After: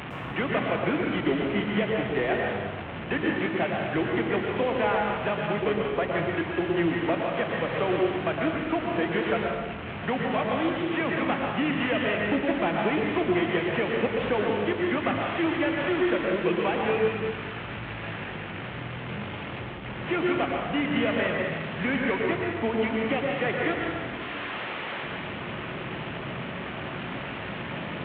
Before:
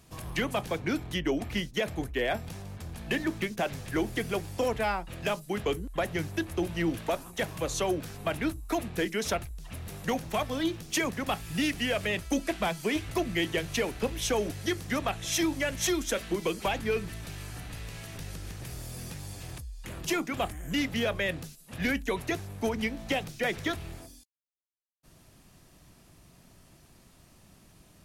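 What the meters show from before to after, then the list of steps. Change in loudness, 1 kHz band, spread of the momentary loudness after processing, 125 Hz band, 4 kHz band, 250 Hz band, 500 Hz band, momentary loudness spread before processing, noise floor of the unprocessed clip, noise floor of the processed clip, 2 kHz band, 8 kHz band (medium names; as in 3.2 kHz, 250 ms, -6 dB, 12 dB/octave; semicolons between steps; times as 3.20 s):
+4.0 dB, +6.0 dB, 9 LU, +3.5 dB, 0.0 dB, +5.0 dB, +5.5 dB, 12 LU, -58 dBFS, -36 dBFS, +5.0 dB, under -40 dB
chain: one-bit delta coder 16 kbps, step -31 dBFS; high-pass 120 Hz 12 dB/octave; plate-style reverb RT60 1.3 s, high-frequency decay 0.95×, pre-delay 100 ms, DRR -0.5 dB; trim +1.5 dB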